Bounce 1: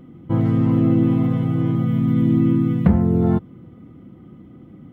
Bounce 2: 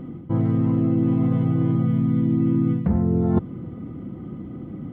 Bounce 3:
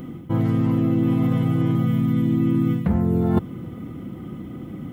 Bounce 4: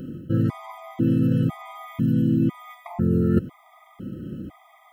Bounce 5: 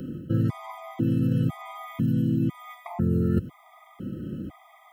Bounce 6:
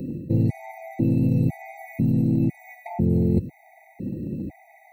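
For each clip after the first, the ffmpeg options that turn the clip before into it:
ffmpeg -i in.wav -af "highshelf=frequency=2300:gain=-10,areverse,acompressor=threshold=-25dB:ratio=12,areverse,volume=8.5dB" out.wav
ffmpeg -i in.wav -af "crystalizer=i=7:c=0" out.wav
ffmpeg -i in.wav -af "afftfilt=real='re*gt(sin(2*PI*1*pts/sr)*(1-2*mod(floor(b*sr/1024/640),2)),0)':imag='im*gt(sin(2*PI*1*pts/sr)*(1-2*mod(floor(b*sr/1024/640),2)),0)':win_size=1024:overlap=0.75" out.wav
ffmpeg -i in.wav -filter_complex "[0:a]acrossover=split=130|3000[link_01][link_02][link_03];[link_02]acompressor=threshold=-27dB:ratio=2[link_04];[link_01][link_04][link_03]amix=inputs=3:normalize=0" out.wav
ffmpeg -i in.wav -filter_complex "[0:a]asplit=2[link_01][link_02];[link_02]aeval=exprs='clip(val(0),-1,0.0398)':channel_layout=same,volume=-5dB[link_03];[link_01][link_03]amix=inputs=2:normalize=0,afftfilt=real='re*eq(mod(floor(b*sr/1024/930),2),0)':imag='im*eq(mod(floor(b*sr/1024/930),2),0)':win_size=1024:overlap=0.75" out.wav

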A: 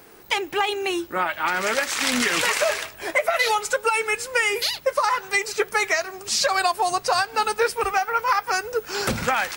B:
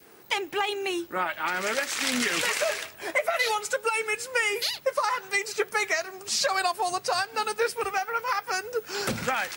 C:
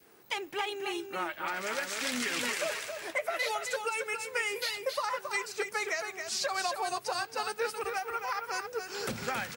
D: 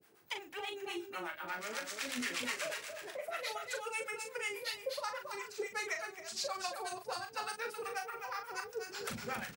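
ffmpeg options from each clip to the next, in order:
ffmpeg -i in.wav -af "adynamicequalizer=threshold=0.0158:dfrequency=990:dqfactor=1.6:tfrequency=990:tqfactor=1.6:attack=5:release=100:ratio=0.375:range=2:mode=cutabove:tftype=bell,highpass=97,volume=-4dB" out.wav
ffmpeg -i in.wav -af "aecho=1:1:272:0.473,volume=-7dB" out.wav
ffmpeg -i in.wav -filter_complex "[0:a]acrossover=split=650[link_01][link_02];[link_01]aeval=exprs='val(0)*(1-1/2+1/2*cos(2*PI*8.2*n/s))':channel_layout=same[link_03];[link_02]aeval=exprs='val(0)*(1-1/2-1/2*cos(2*PI*8.2*n/s))':channel_layout=same[link_04];[link_03][link_04]amix=inputs=2:normalize=0,asplit=2[link_05][link_06];[link_06]adelay=40,volume=-6.5dB[link_07];[link_05][link_07]amix=inputs=2:normalize=0,volume=-2.5dB" out.wav

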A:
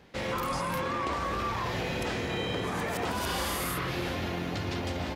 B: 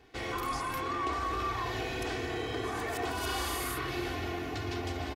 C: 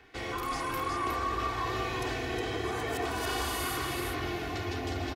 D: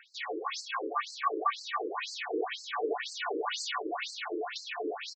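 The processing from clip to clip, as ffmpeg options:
ffmpeg -i in.wav -af "aecho=1:1:2.7:0.78,volume=-4.5dB" out.wav
ffmpeg -i in.wav -filter_complex "[0:a]acrossover=split=240|1600|2000[link_01][link_02][link_03][link_04];[link_03]acompressor=mode=upward:threshold=-54dB:ratio=2.5[link_05];[link_01][link_02][link_05][link_04]amix=inputs=4:normalize=0,aecho=1:1:363:0.631" out.wav
ffmpeg -i in.wav -af "aecho=1:1:6.9:0.55,afftfilt=real='re*between(b*sr/1024,390*pow(5900/390,0.5+0.5*sin(2*PI*2*pts/sr))/1.41,390*pow(5900/390,0.5+0.5*sin(2*PI*2*pts/sr))*1.41)':imag='im*between(b*sr/1024,390*pow(5900/390,0.5+0.5*sin(2*PI*2*pts/sr))/1.41,390*pow(5900/390,0.5+0.5*sin(2*PI*2*pts/sr))*1.41)':win_size=1024:overlap=0.75,volume=5.5dB" out.wav

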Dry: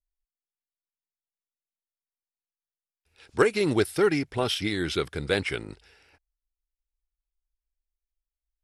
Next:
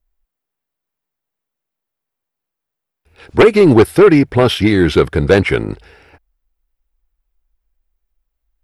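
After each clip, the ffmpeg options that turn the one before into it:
ffmpeg -i in.wav -af "equalizer=frequency=6900:width_type=o:width=2.8:gain=-14,aeval=exprs='0.316*sin(PI/2*2.24*val(0)/0.316)':channel_layout=same,volume=7.5dB" out.wav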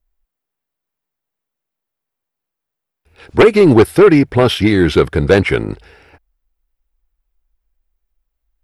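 ffmpeg -i in.wav -af anull out.wav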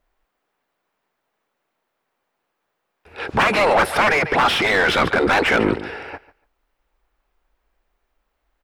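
ffmpeg -i in.wav -filter_complex "[0:a]afftfilt=real='re*lt(hypot(re,im),0.631)':imag='im*lt(hypot(re,im),0.631)':win_size=1024:overlap=0.75,aecho=1:1:144|288:0.112|0.0202,asplit=2[link_01][link_02];[link_02]highpass=frequency=720:poles=1,volume=25dB,asoftclip=type=tanh:threshold=-4dB[link_03];[link_01][link_03]amix=inputs=2:normalize=0,lowpass=frequency=1100:poles=1,volume=-6dB" out.wav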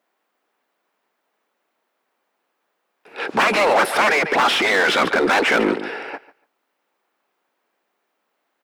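ffmpeg -i in.wav -filter_complex "[0:a]highpass=frequency=200:width=0.5412,highpass=frequency=200:width=1.3066,asplit=2[link_01][link_02];[link_02]aeval=exprs='0.0841*(abs(mod(val(0)/0.0841+3,4)-2)-1)':channel_layout=same,volume=-9.5dB[link_03];[link_01][link_03]amix=inputs=2:normalize=0" out.wav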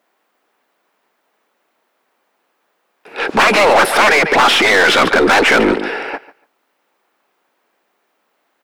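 ffmpeg -i in.wav -af "aeval=exprs='(tanh(3.98*val(0)+0.2)-tanh(0.2))/3.98':channel_layout=same,volume=8dB" out.wav

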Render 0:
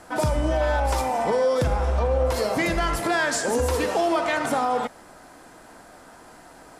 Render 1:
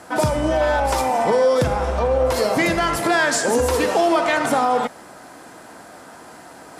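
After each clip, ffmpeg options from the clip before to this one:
ffmpeg -i in.wav -af "highpass=95,areverse,acompressor=mode=upward:threshold=-42dB:ratio=2.5,areverse,volume=5dB" out.wav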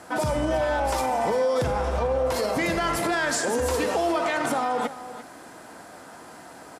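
ffmpeg -i in.wav -af "alimiter=limit=-13.5dB:level=0:latency=1:release=52,aecho=1:1:344:0.2,volume=-3dB" out.wav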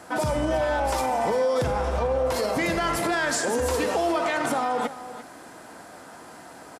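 ffmpeg -i in.wav -af "aresample=32000,aresample=44100" out.wav

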